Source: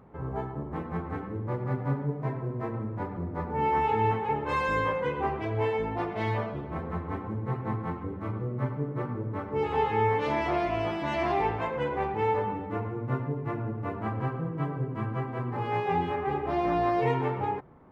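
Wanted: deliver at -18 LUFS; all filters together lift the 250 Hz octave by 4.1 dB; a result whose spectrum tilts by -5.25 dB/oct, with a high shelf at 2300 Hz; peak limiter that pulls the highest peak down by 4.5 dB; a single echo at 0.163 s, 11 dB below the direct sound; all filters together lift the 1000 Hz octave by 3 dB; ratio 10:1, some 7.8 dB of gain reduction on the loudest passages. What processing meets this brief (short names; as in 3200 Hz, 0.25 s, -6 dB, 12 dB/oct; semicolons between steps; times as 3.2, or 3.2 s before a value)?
bell 250 Hz +5.5 dB; bell 1000 Hz +4 dB; high shelf 2300 Hz -4.5 dB; compressor 10:1, threshold -27 dBFS; limiter -23.5 dBFS; echo 0.163 s -11 dB; gain +14.5 dB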